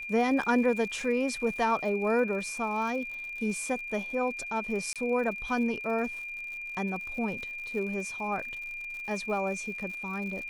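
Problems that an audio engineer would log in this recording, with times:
crackle 96/s -39 dBFS
tone 2400 Hz -36 dBFS
4.93–4.96 gap 27 ms

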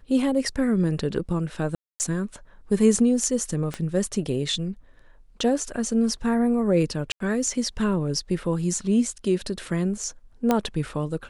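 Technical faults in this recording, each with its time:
1.75–2 gap 0.249 s
3.74 pop -16 dBFS
7.12–7.2 gap 83 ms
10.51 pop -8 dBFS

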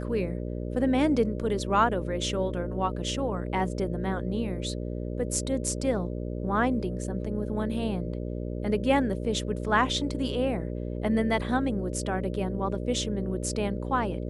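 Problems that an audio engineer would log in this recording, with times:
buzz 60 Hz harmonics 10 -33 dBFS

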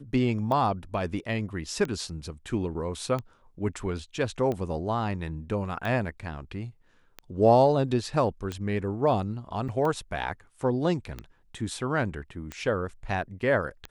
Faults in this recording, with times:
tick 45 rpm -20 dBFS
9.68–9.69 gap 6.2 ms

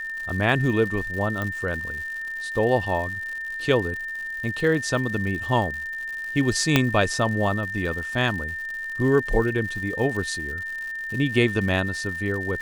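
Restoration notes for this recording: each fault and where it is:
crackle 160/s -32 dBFS
tone 1800 Hz -29 dBFS
1.42 pop
6.76 pop -2 dBFS

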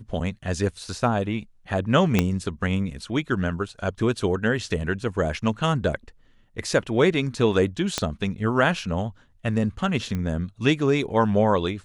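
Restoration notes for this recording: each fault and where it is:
2.19 pop -5 dBFS
7.98 pop -8 dBFS
10.15 pop -17 dBFS

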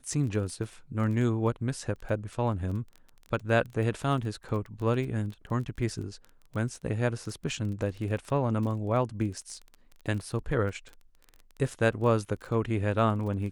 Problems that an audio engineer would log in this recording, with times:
crackle 19/s -36 dBFS

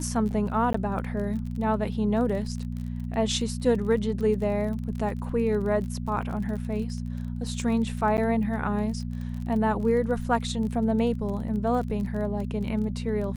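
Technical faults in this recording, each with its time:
crackle 26/s -34 dBFS
hum 60 Hz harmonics 4 -32 dBFS
0.73–0.74 gap 14 ms
8.17–8.18 gap 9.5 ms

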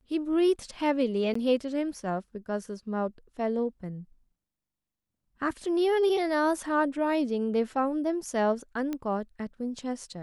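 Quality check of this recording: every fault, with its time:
1.34–1.35 gap 14 ms
8.93 pop -20 dBFS

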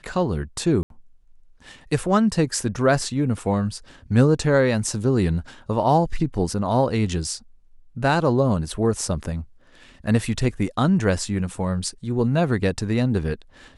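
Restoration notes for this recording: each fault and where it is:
0.83–0.9 gap 72 ms

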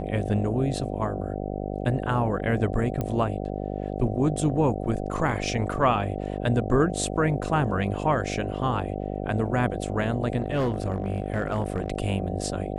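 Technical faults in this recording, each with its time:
buzz 50 Hz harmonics 15 -31 dBFS
3.01 pop -16 dBFS
10.41–11.9 clipped -20 dBFS

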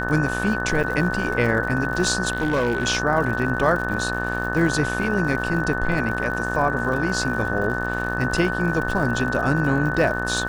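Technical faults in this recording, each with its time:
buzz 60 Hz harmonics 30 -28 dBFS
crackle 110/s -30 dBFS
tone 1500 Hz -27 dBFS
0.83–0.84 gap 7 ms
2.32–2.85 clipped -16.5 dBFS

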